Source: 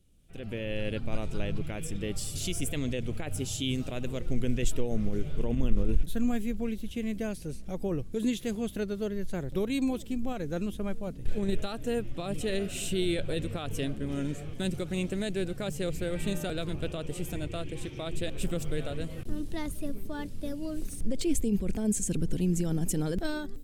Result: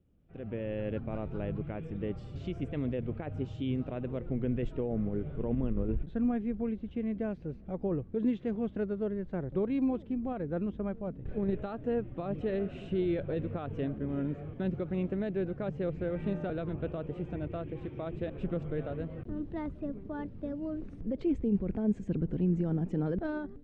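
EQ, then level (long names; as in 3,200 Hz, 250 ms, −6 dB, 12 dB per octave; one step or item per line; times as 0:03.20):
high-pass filter 73 Hz 6 dB per octave
low-pass filter 1,400 Hz 12 dB per octave
high-frequency loss of the air 87 metres
0.0 dB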